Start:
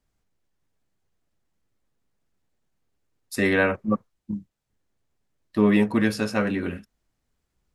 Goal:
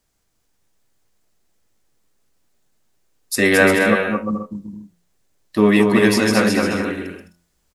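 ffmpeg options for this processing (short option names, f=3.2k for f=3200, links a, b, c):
-filter_complex "[0:a]bass=f=250:g=-5,treble=f=4k:g=6,bandreject=f=86.55:t=h:w=4,bandreject=f=173.1:t=h:w=4,bandreject=f=259.65:t=h:w=4,bandreject=f=346.2:t=h:w=4,bandreject=f=432.75:t=h:w=4,bandreject=f=519.3:t=h:w=4,bandreject=f=605.85:t=h:w=4,bandreject=f=692.4:t=h:w=4,bandreject=f=778.95:t=h:w=4,bandreject=f=865.5:t=h:w=4,bandreject=f=952.05:t=h:w=4,bandreject=f=1.0386k:t=h:w=4,bandreject=f=1.12515k:t=h:w=4,bandreject=f=1.2117k:t=h:w=4,bandreject=f=1.29825k:t=h:w=4,bandreject=f=1.3848k:t=h:w=4,bandreject=f=1.47135k:t=h:w=4,asplit=2[a][b];[b]aecho=0:1:220|352|431.2|478.7|507.2:0.631|0.398|0.251|0.158|0.1[c];[a][c]amix=inputs=2:normalize=0,volume=7dB"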